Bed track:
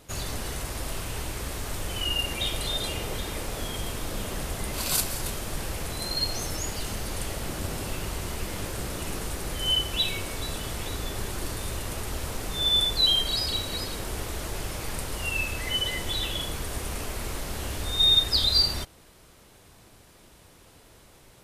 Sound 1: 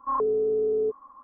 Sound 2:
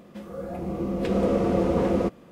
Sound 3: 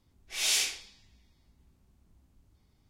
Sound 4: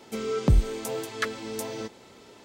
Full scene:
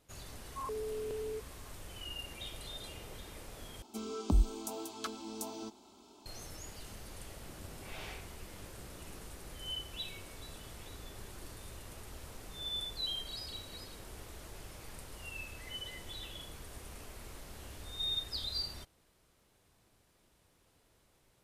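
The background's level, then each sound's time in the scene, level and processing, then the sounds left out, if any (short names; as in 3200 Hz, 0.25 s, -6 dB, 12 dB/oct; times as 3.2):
bed track -16 dB
0.49 add 1 -15 dB + stuck buffer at 0.41, samples 1024
3.82 replace with 4 -5 dB + fixed phaser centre 500 Hz, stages 6
7.51 add 3 -3.5 dB + LPF 1200 Hz
not used: 2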